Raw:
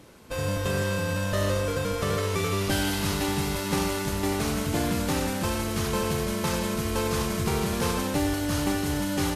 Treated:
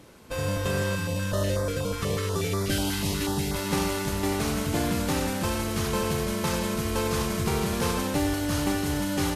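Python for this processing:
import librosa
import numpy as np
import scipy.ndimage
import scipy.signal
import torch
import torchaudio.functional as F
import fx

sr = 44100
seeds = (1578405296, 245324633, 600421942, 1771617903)

y = fx.filter_held_notch(x, sr, hz=8.2, low_hz=580.0, high_hz=2800.0, at=(0.95, 3.54))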